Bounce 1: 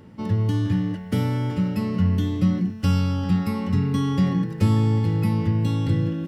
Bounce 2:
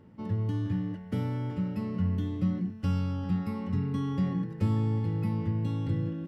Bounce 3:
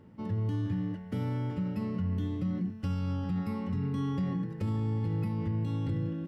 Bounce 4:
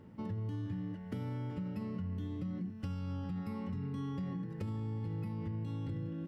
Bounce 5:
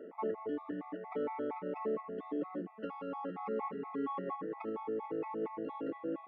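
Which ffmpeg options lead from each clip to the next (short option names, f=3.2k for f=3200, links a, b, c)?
-af "highshelf=f=3k:g=-9.5,volume=-8dB"
-af "alimiter=level_in=0.5dB:limit=-24dB:level=0:latency=1:release=33,volume=-0.5dB"
-af "acompressor=threshold=-38dB:ratio=3"
-af "highpass=f=330:w=0.5412,highpass=f=330:w=1.3066,equalizer=f=450:t=q:w=4:g=5,equalizer=f=700:t=q:w=4:g=6,equalizer=f=1.1k:t=q:w=4:g=5,equalizer=f=1.6k:t=q:w=4:g=-6,lowpass=f=2.2k:w=0.5412,lowpass=f=2.2k:w=1.3066,afftfilt=real='re*gt(sin(2*PI*4.3*pts/sr)*(1-2*mod(floor(b*sr/1024/660),2)),0)':imag='im*gt(sin(2*PI*4.3*pts/sr)*(1-2*mod(floor(b*sr/1024/660),2)),0)':win_size=1024:overlap=0.75,volume=11.5dB"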